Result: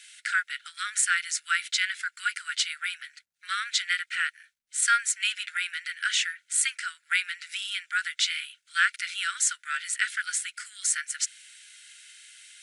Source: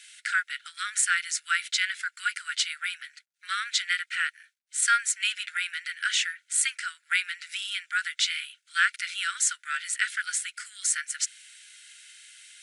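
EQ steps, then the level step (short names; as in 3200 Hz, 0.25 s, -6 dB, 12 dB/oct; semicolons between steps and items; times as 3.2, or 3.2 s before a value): tone controls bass +9 dB, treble 0 dB; 0.0 dB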